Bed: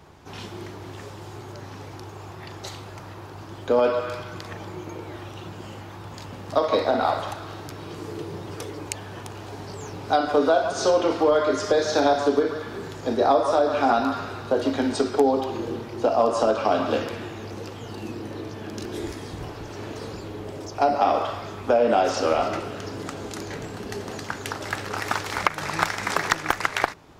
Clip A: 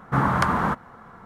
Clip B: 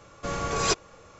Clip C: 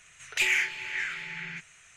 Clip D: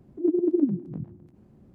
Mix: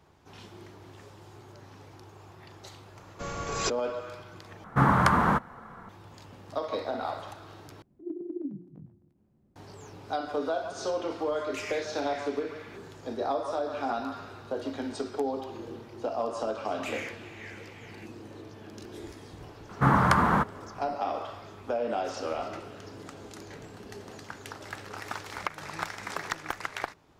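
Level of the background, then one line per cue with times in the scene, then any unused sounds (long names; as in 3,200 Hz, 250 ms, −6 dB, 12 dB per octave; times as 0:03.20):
bed −11 dB
0:02.96: mix in B −5.5 dB
0:04.64: overwrite with A −0.5 dB
0:07.82: overwrite with D −12.5 dB + mains-hum notches 60/120/180/240/300/360/420/480/540 Hz
0:11.17: mix in C −15 dB
0:16.46: mix in C −14 dB
0:19.69: mix in A −0.5 dB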